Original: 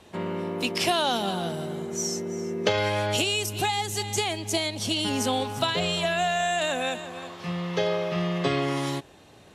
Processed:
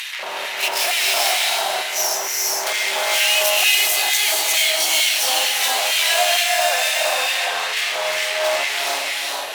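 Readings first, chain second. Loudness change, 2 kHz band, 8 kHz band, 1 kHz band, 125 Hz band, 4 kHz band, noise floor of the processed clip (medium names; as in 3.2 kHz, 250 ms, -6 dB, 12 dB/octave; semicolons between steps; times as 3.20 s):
+9.5 dB, +12.5 dB, +14.0 dB, +5.5 dB, under -30 dB, +11.5 dB, -27 dBFS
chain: octave divider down 1 oct, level -2 dB; peaking EQ 7.8 kHz -9 dB 0.82 oct; hum notches 60/120/180 Hz; sine folder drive 10 dB, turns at -8.5 dBFS; peak limiter -14 dBFS, peak gain reduction 5.5 dB; upward compressor, threshold -24 dBFS; valve stage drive 29 dB, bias 0.5; LFO high-pass square 2.2 Hz 650–2100 Hz; tilt EQ +3.5 dB/octave; reverse echo 35 ms -8.5 dB; gated-style reverb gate 490 ms rising, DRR -2 dB; trim +3 dB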